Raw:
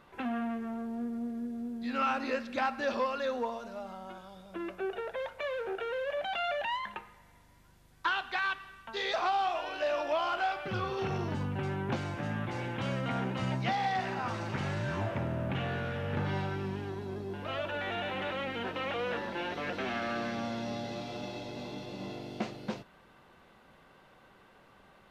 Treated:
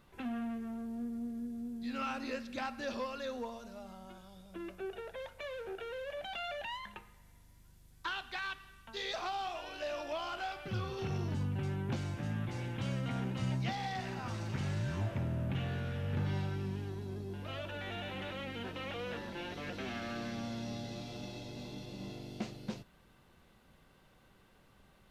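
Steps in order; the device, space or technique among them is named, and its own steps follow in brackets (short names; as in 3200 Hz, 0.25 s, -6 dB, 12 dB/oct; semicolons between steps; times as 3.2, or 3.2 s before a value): smiley-face EQ (low shelf 120 Hz +8.5 dB; bell 990 Hz -6 dB 2.9 oct; high shelf 5500 Hz +7 dB); gain -3.5 dB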